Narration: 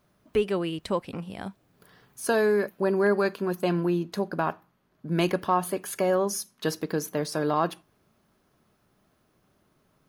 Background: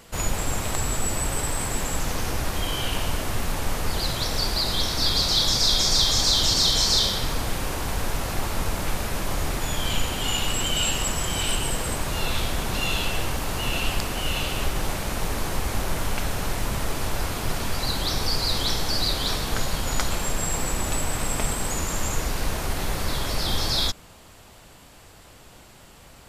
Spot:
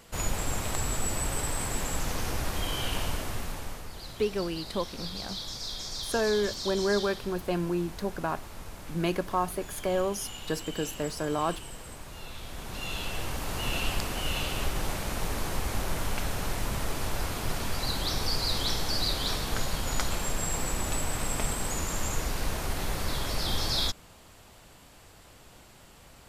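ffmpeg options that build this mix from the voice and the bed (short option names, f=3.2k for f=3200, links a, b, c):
-filter_complex "[0:a]adelay=3850,volume=-4dB[a];[1:a]volume=7.5dB,afade=t=out:st=3.02:d=0.87:silence=0.251189,afade=t=in:st=12.39:d=1.31:silence=0.251189[b];[a][b]amix=inputs=2:normalize=0"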